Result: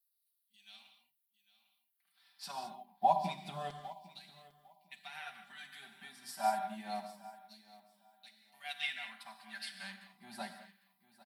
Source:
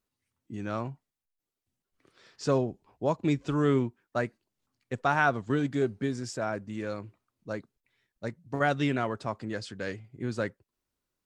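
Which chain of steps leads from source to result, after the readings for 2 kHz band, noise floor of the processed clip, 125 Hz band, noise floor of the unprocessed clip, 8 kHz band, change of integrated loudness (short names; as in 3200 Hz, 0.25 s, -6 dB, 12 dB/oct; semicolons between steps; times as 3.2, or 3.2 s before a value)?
-11.5 dB, -82 dBFS, -22.0 dB, under -85 dBFS, -5.5 dB, -8.5 dB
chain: bell 570 Hz -4.5 dB 2.3 oct; notches 50/100/150/200/250/300/350/400 Hz; limiter -24 dBFS, peak gain reduction 11 dB; EQ curve 130 Hz 0 dB, 190 Hz +14 dB, 500 Hz -29 dB, 720 Hz +6 dB, 1200 Hz -18 dB, 4200 Hz -3 dB, 6900 Hz -19 dB, 11000 Hz +13 dB; LFO high-pass saw down 0.27 Hz 540–4700 Hz; comb 5.1 ms, depth 93%; on a send: feedback echo 0.802 s, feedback 29%, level -13 dB; on the sum: non-linear reverb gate 0.24 s flat, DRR 3.5 dB; upward expander 1.5:1, over -58 dBFS; gain +7.5 dB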